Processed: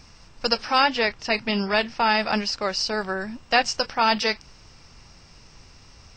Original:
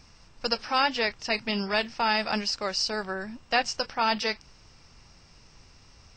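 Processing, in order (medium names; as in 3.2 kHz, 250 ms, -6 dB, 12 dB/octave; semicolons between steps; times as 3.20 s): 0.84–3.01 s: treble shelf 6 kHz -8 dB; trim +5 dB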